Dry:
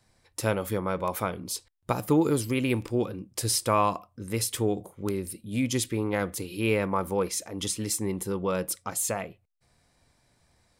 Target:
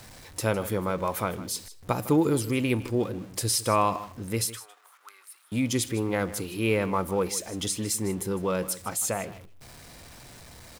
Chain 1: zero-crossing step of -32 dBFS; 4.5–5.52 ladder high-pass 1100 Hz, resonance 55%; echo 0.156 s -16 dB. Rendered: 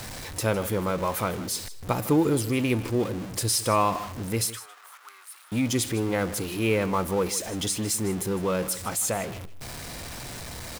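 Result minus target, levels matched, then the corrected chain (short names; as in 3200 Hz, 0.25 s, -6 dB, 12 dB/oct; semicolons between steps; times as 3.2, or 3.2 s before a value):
zero-crossing step: distortion +9 dB
zero-crossing step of -42.5 dBFS; 4.5–5.52 ladder high-pass 1100 Hz, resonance 55%; echo 0.156 s -16 dB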